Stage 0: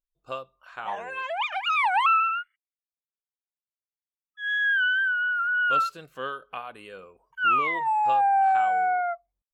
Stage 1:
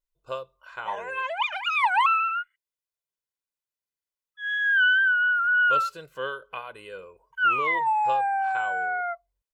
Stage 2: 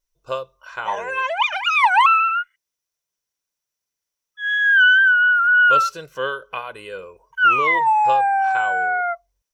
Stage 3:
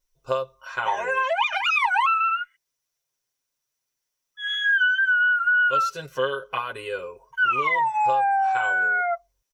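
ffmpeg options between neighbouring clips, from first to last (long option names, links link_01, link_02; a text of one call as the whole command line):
ffmpeg -i in.wav -af "aecho=1:1:2:0.55" out.wav
ffmpeg -i in.wav -af "equalizer=frequency=5800:width=7.5:gain=13.5,volume=7dB" out.wav
ffmpeg -i in.wav -af "aecho=1:1:7.5:0.8,acompressor=threshold=-20dB:ratio=4" out.wav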